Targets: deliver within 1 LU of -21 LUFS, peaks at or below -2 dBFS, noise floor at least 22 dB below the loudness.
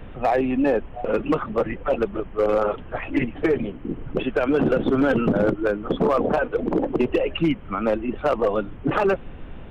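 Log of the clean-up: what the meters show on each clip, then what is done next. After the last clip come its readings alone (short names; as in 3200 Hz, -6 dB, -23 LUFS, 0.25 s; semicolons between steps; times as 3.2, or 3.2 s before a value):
clipped 1.2%; flat tops at -13.0 dBFS; noise floor -38 dBFS; noise floor target -45 dBFS; loudness -23.0 LUFS; peak -13.0 dBFS; loudness target -21.0 LUFS
-> clip repair -13 dBFS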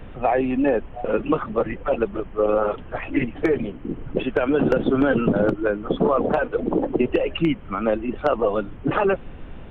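clipped 0.0%; noise floor -38 dBFS; noise floor target -45 dBFS
-> noise print and reduce 7 dB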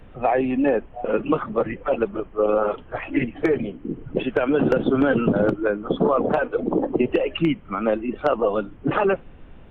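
noise floor -44 dBFS; noise floor target -45 dBFS
-> noise print and reduce 6 dB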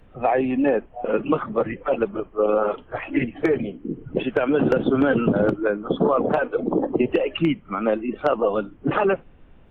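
noise floor -50 dBFS; loudness -22.5 LUFS; peak -4.5 dBFS; loudness target -21.0 LUFS
-> gain +1.5 dB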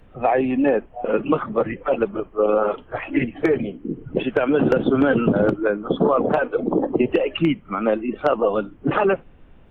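loudness -21.0 LUFS; peak -3.0 dBFS; noise floor -48 dBFS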